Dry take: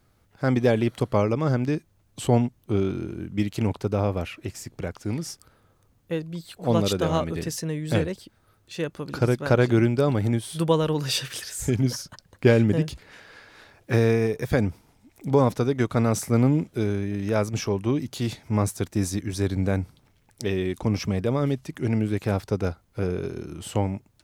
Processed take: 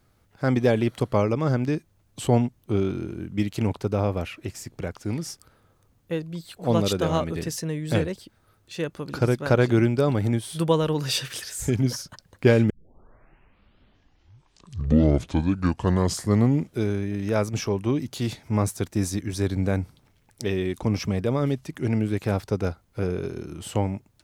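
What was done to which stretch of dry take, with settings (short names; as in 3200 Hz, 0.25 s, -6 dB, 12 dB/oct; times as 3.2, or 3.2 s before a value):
12.7 tape start 4.07 s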